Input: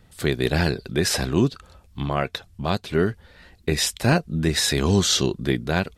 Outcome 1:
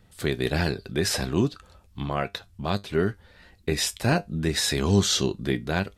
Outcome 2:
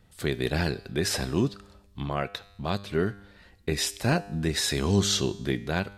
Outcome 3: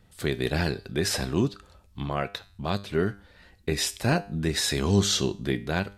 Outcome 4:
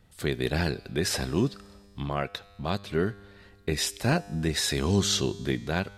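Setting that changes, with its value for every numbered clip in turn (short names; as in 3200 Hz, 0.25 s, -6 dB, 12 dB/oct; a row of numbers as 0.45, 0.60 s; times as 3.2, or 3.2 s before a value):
resonator, decay: 0.17, 0.99, 0.44, 2.2 s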